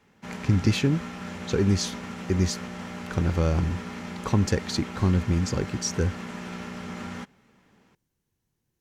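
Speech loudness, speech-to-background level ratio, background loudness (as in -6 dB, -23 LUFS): -26.5 LUFS, 10.5 dB, -37.0 LUFS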